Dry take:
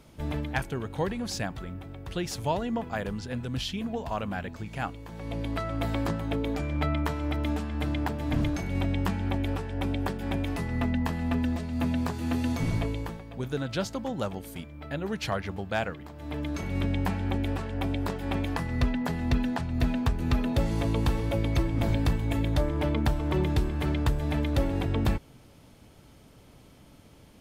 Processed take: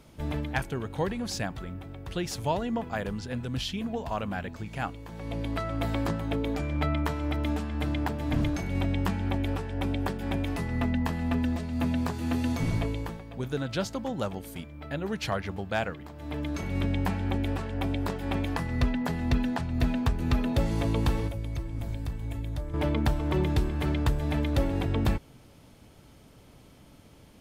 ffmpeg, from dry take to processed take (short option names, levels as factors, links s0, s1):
-filter_complex "[0:a]asettb=1/sr,asplit=3[s0][s1][s2];[s0]atrim=end=21.274[s3];[s1]atrim=start=21.27:end=22.74,asetpts=PTS-STARTPTS,afade=t=in:d=0.004:c=qsin,afade=t=out:st=1.466:d=0.004:c=qsin,acrossover=split=120|6300[s4][s5][s6];[s4]acompressor=threshold=0.0282:ratio=4[s7];[s5]acompressor=threshold=0.00794:ratio=4[s8];[s6]acompressor=threshold=0.00126:ratio=4[s9];[s7][s8][s9]amix=inputs=3:normalize=0[s10];[s2]atrim=start=22.736[s11];[s3][s10]acrossfade=d=0.004:c1=hsin:c2=qsin[s12];[s12][s11]acrossfade=d=0.004:c1=qsin:c2=hsin"